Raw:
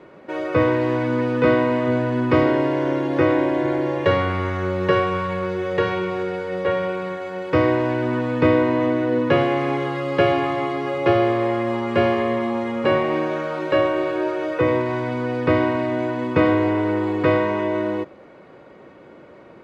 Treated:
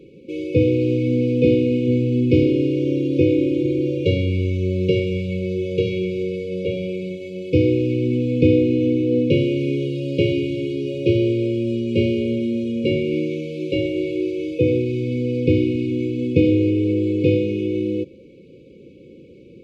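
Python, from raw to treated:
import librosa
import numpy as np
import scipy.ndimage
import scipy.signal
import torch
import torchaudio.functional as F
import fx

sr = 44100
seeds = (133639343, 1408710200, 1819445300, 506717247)

y = fx.brickwall_bandstop(x, sr, low_hz=550.0, high_hz=2200.0)
y = fx.low_shelf(y, sr, hz=240.0, db=6.5)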